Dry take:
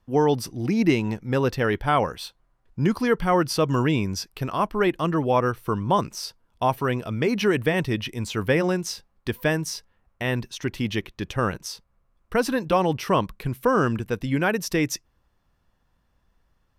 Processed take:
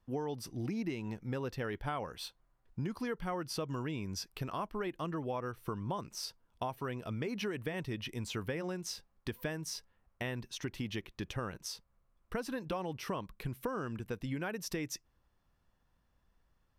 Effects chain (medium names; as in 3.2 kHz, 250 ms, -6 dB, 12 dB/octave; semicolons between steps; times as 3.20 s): compression 6:1, threshold -28 dBFS, peak gain reduction 13.5 dB; trim -6.5 dB